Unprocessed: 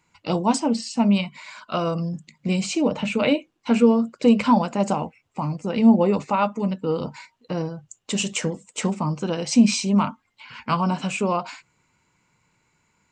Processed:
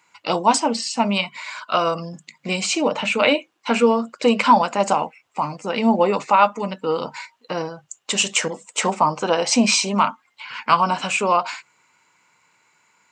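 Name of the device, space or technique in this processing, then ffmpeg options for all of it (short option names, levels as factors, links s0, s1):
filter by subtraction: -filter_complex "[0:a]asettb=1/sr,asplit=3[s0][s1][s2];[s0]atrim=end=8.484[s3];[s1]atrim=start=8.48:end=9.89,asetpts=PTS-STARTPTS,afade=t=in:d=0.004:c=qsin,afade=t=out:st=1.406:d=0.004:c=qsin,adynamicequalizer=threshold=0.02:dfrequency=720:dqfactor=0.8:tfrequency=720:tqfactor=0.8:attack=5:release=100:ratio=0.375:range=3.5:mode=boostabove:tftype=bell[s4];[s2]atrim=start=9.886[s5];[s3][s4]acrossfade=d=0.004:c1=hsin:c2=qsin[s6];[s6][s5]acrossfade=d=0.004:c1=qsin:c2=hsin,asplit=2[s7][s8];[s8]lowpass=1100,volume=-1[s9];[s7][s9]amix=inputs=2:normalize=0,volume=2.11"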